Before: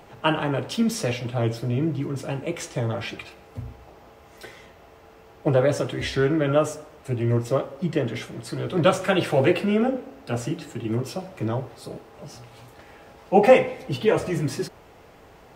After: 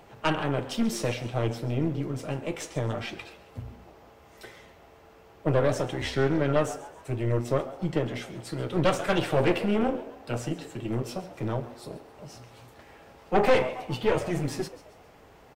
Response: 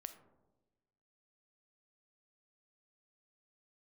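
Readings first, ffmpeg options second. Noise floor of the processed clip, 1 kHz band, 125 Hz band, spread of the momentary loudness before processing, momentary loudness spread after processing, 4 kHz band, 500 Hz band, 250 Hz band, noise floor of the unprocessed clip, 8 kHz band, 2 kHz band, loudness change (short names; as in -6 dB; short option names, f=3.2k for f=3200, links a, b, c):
-54 dBFS, -4.0 dB, -3.5 dB, 19 LU, 18 LU, -3.5 dB, -5.0 dB, -4.0 dB, -50 dBFS, -3.5 dB, -3.5 dB, -4.5 dB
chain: -filter_complex "[0:a]asplit=5[a][b][c][d][e];[b]adelay=136,afreqshift=120,volume=-16.5dB[f];[c]adelay=272,afreqshift=240,volume=-23.6dB[g];[d]adelay=408,afreqshift=360,volume=-30.8dB[h];[e]adelay=544,afreqshift=480,volume=-37.9dB[i];[a][f][g][h][i]amix=inputs=5:normalize=0,aeval=exprs='(tanh(6.31*val(0)+0.7)-tanh(0.7))/6.31':c=same"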